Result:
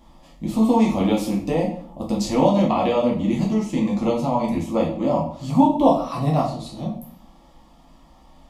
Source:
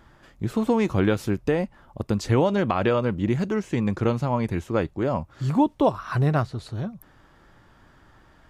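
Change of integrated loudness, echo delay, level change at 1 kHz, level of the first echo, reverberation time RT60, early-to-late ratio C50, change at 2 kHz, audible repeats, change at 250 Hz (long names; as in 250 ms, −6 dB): +3.5 dB, no echo audible, +5.5 dB, no echo audible, 0.55 s, 6.5 dB, −4.5 dB, no echo audible, +5.0 dB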